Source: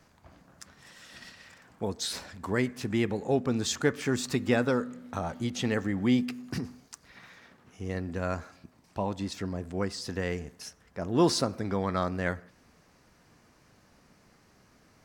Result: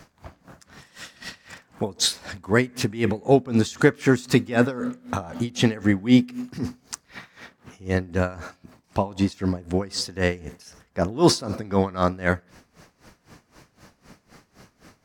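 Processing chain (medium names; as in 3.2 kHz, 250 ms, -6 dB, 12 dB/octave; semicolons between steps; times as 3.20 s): in parallel at +1 dB: peak limiter -21 dBFS, peak gain reduction 10 dB; on the sum: logarithmic tremolo 3.9 Hz, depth 20 dB; trim +7 dB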